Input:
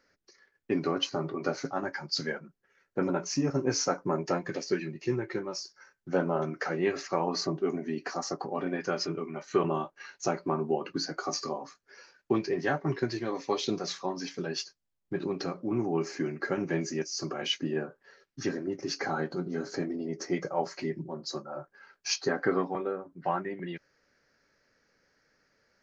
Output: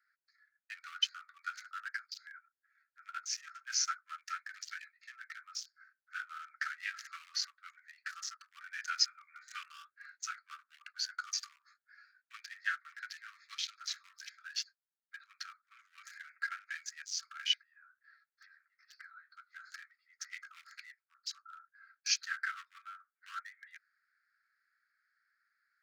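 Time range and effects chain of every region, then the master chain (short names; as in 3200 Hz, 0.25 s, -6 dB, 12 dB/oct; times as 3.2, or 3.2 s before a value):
2.03–3.06 high shelf 4100 Hz +5.5 dB + compressor 16:1, threshold -36 dBFS
8.72–9.96 HPF 590 Hz 24 dB/oct + tilt +2.5 dB/oct
17.53–19.37 notch 440 Hz, Q 14 + compressor 12:1, threshold -40 dBFS + brick-wall FIR low-pass 6300 Hz
whole clip: Wiener smoothing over 15 samples; steep high-pass 1300 Hz 96 dB/oct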